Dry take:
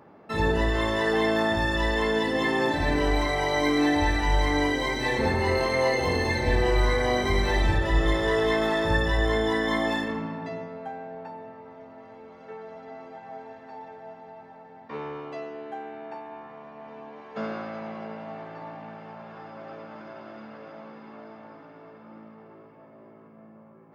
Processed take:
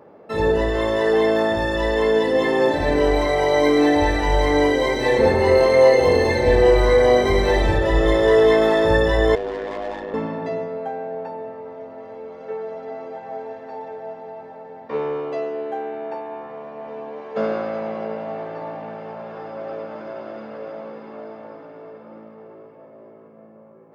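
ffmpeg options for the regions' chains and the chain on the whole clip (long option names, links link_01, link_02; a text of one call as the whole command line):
ffmpeg -i in.wav -filter_complex "[0:a]asettb=1/sr,asplit=3[link_01][link_02][link_03];[link_01]atrim=end=9.354[link_04];[link_02]atrim=start=9.35:end=10.14,asetpts=PTS-STARTPTS,afade=type=in:duration=0.004:curve=qsin,afade=type=out:start_time=0.786:duration=0.004:curve=qsin,bandpass=frequency=730:width_type=q:width=0.7,aeval=exprs='(tanh(35.5*val(0)+0.2)-tanh(0.2))/35.5':channel_layout=same,aeval=exprs='val(0)*sin(2*PI*49*n/s)':channel_layout=same[link_05];[link_03]atrim=start=10.136[link_06];[link_04][link_05]acrossfade=duration=0.004:curve1=hsin:curve2=qsin[link_07];[link_07][link_06]acrossfade=duration=0.004:curve1=qsin:curve2=hsin,equalizer=frequency=500:width_type=o:width=0.87:gain=10.5,dynaudnorm=framelen=860:gausssize=7:maxgain=4dB" out.wav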